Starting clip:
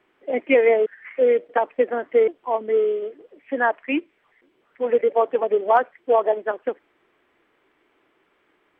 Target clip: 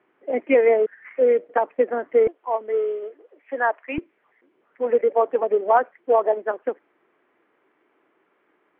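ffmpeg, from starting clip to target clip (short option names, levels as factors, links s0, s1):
-af "asetnsamples=n=441:p=0,asendcmd='2.27 highpass f 450;3.98 highpass f 180',highpass=130,lowpass=2000"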